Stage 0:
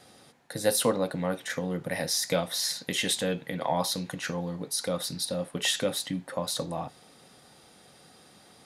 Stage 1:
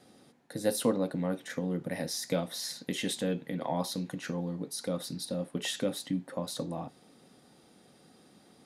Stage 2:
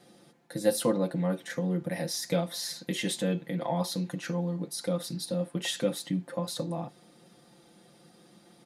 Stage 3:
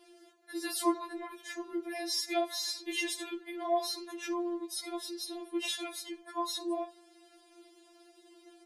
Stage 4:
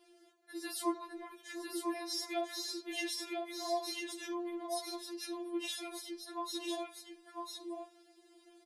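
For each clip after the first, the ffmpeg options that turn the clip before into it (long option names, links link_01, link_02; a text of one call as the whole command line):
ffmpeg -i in.wav -af "equalizer=frequency=260:width_type=o:width=1.7:gain=10,volume=-8dB" out.wav
ffmpeg -i in.wav -af "aecho=1:1:5.8:0.73" out.wav
ffmpeg -i in.wav -af "afftfilt=real='re*4*eq(mod(b,16),0)':imag='im*4*eq(mod(b,16),0)':win_size=2048:overlap=0.75" out.wav
ffmpeg -i in.wav -af "aecho=1:1:998:0.631,volume=-5.5dB" out.wav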